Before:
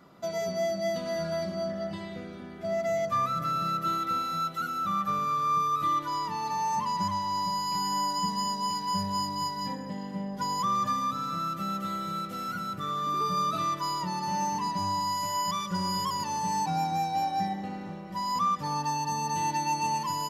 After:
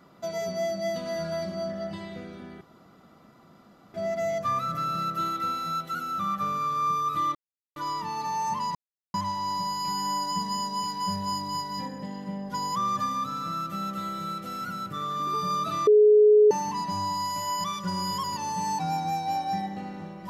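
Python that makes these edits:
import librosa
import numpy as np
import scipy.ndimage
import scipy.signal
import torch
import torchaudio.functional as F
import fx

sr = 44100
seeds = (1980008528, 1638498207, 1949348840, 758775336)

y = fx.edit(x, sr, fx.insert_room_tone(at_s=2.61, length_s=1.33),
    fx.insert_silence(at_s=6.02, length_s=0.41),
    fx.insert_silence(at_s=7.01, length_s=0.39),
    fx.bleep(start_s=13.74, length_s=0.64, hz=422.0, db=-13.0), tone=tone)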